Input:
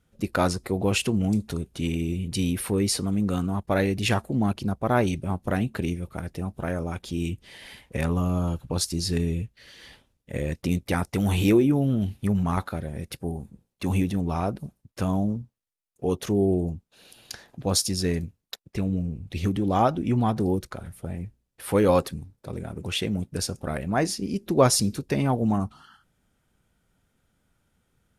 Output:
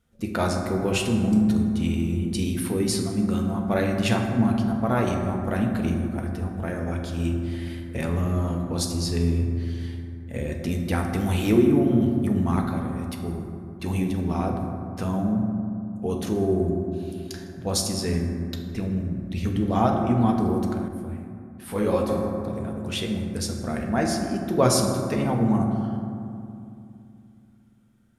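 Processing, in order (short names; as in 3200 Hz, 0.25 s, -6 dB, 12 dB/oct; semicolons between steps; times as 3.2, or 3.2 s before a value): reverb RT60 2.7 s, pre-delay 4 ms, DRR 1 dB; 20.88–22.09 detuned doubles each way 37 cents; gain -2.5 dB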